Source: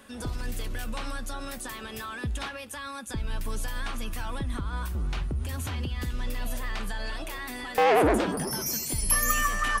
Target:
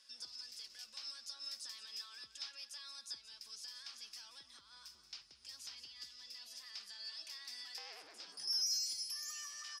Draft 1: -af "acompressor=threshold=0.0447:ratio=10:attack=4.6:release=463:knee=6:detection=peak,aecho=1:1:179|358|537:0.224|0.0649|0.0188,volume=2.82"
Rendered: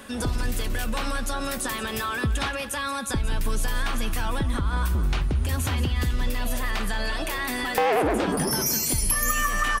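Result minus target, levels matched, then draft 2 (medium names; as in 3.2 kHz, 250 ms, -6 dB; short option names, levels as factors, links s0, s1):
4 kHz band -9.0 dB
-af "acompressor=threshold=0.0447:ratio=10:attack=4.6:release=463:knee=6:detection=peak,bandpass=f=5100:t=q:w=10:csg=0,aecho=1:1:179|358|537:0.224|0.0649|0.0188,volume=2.82"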